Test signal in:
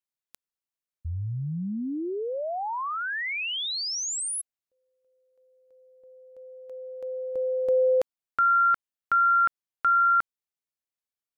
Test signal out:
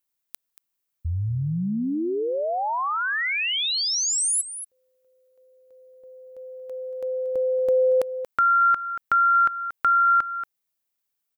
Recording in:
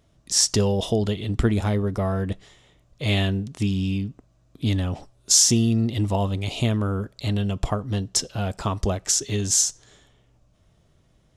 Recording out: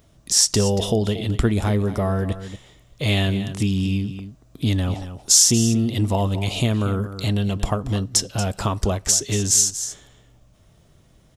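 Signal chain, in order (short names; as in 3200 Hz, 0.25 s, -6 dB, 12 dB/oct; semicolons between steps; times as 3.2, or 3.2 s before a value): high shelf 12000 Hz +12 dB; echo 0.232 s -14 dB; in parallel at +1.5 dB: compressor, threshold -29 dBFS; on the sum: gain -1 dB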